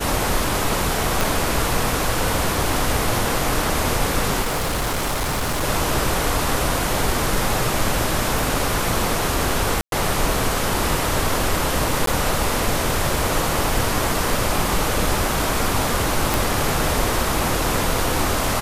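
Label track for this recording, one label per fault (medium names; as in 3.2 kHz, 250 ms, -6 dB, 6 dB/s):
1.210000	1.210000	pop
4.410000	5.640000	clipped -19 dBFS
8.390000	8.390000	pop
9.810000	9.920000	dropout 112 ms
12.060000	12.070000	dropout 13 ms
16.340000	16.340000	pop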